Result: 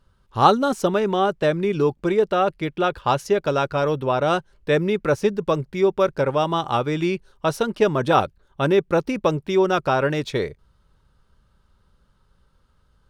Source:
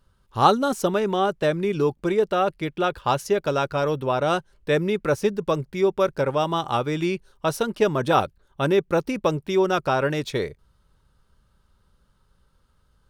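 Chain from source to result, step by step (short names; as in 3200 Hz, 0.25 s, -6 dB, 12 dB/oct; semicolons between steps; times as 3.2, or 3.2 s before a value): high shelf 8700 Hz -9 dB; gain +2 dB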